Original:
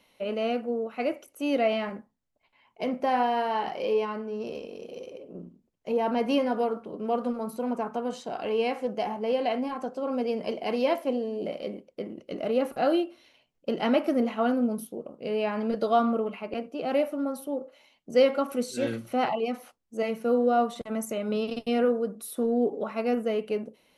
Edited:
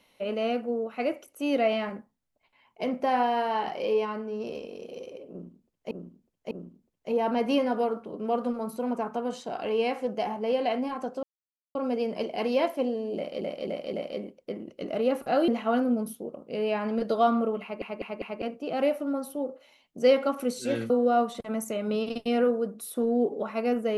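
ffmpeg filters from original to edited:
-filter_complex "[0:a]asplit=12[a][b][c][d][e][f][g][h][i][j][k][l];[a]atrim=end=5.912[m];[b]atrim=start=5.308:end=5.912[n];[c]atrim=start=5.308:end=10.03,asetpts=PTS-STARTPTS,afade=t=out:st=4.718:d=0.004:c=hsin,apad=pad_dur=0.52[o];[d]atrim=start=10.03:end=11.692,asetpts=PTS-STARTPTS,afade=t=in:d=0.004:c=hsin[p];[e]atrim=start=11.428:end=11.692[q];[f]atrim=start=11.428:end=11.692[r];[g]atrim=start=11.428:end=12.982[s];[h]atrim=start=14.198:end=16.542[t];[i]atrim=start=16.338:end=16.542[u];[j]atrim=start=16.338:end=16.542[v];[k]atrim=start=16.338:end=19.022[w];[l]atrim=start=20.308[x];[m][n]acrossfade=d=0.004:c1=hsin:c2=hsin[y];[o][p]concat=n=2:v=0:a=1[z];[y][z]acrossfade=d=0.004:c1=hsin:c2=hsin[aa];[aa][q]acrossfade=d=0.004:c1=hsin:c2=hsin[ab];[ab][r]acrossfade=d=0.004:c1=hsin:c2=hsin[ac];[ac][s]acrossfade=d=0.004:c1=hsin:c2=hsin[ad];[ad][t]acrossfade=d=0.004:c1=hsin:c2=hsin[ae];[ae][u]acrossfade=d=0.004:c1=hsin:c2=hsin[af];[af][v]acrossfade=d=0.004:c1=hsin:c2=hsin[ag];[ag][w]acrossfade=d=0.004:c1=hsin:c2=hsin[ah];[ah][x]acrossfade=d=0.004:c1=hsin:c2=hsin"

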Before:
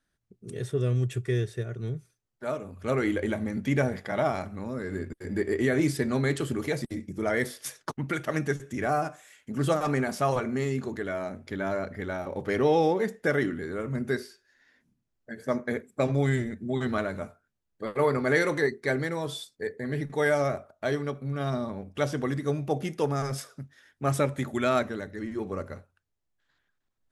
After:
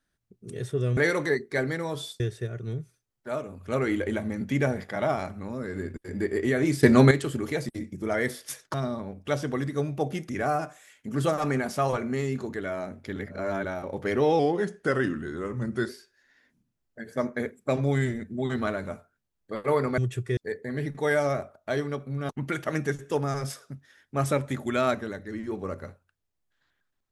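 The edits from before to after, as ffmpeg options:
-filter_complex "[0:a]asplit=15[a][b][c][d][e][f][g][h][i][j][k][l][m][n][o];[a]atrim=end=0.972[p];[b]atrim=start=18.288:end=19.522[q];[c]atrim=start=1.358:end=5.992[r];[d]atrim=start=5.988:end=6.272,asetpts=PTS-STARTPTS,volume=10.5dB[s];[e]atrim=start=6.268:end=7.902[t];[f]atrim=start=21.438:end=22.992[u];[g]atrim=start=8.718:end=11.592[v];[h]atrim=start=11.588:end=12.072,asetpts=PTS-STARTPTS,areverse[w];[i]atrim=start=12.068:end=12.824[x];[j]atrim=start=12.82:end=14.2,asetpts=PTS-STARTPTS,asetrate=40572,aresample=44100[y];[k]atrim=start=14.196:end=18.292[z];[l]atrim=start=0.968:end=1.362[aa];[m]atrim=start=19.518:end=21.442[ab];[n]atrim=start=7.898:end=8.722[ac];[o]atrim=start=22.988[ad];[p][q]acrossfade=d=0.004:c1=hsin:c2=hsin[ae];[ae][r]acrossfade=d=0.004:c1=hsin:c2=hsin[af];[af][s]acrossfade=d=0.004:c1=hsin:c2=hsin[ag];[ag][t]acrossfade=d=0.004:c1=hsin:c2=hsin[ah];[ah][u]acrossfade=d=0.004:c1=hsin:c2=hsin[ai];[ai][v]acrossfade=d=0.004:c1=hsin:c2=hsin[aj];[aj][w]acrossfade=d=0.004:c1=hsin:c2=hsin[ak];[ak][x]acrossfade=d=0.004:c1=hsin:c2=hsin[al];[al][y]acrossfade=d=0.004:c1=hsin:c2=hsin[am];[am][z]acrossfade=d=0.004:c1=hsin:c2=hsin[an];[an][aa]acrossfade=d=0.004:c1=hsin:c2=hsin[ao];[ao][ab]acrossfade=d=0.004:c1=hsin:c2=hsin[ap];[ap][ac]acrossfade=d=0.004:c1=hsin:c2=hsin[aq];[aq][ad]acrossfade=d=0.004:c1=hsin:c2=hsin"

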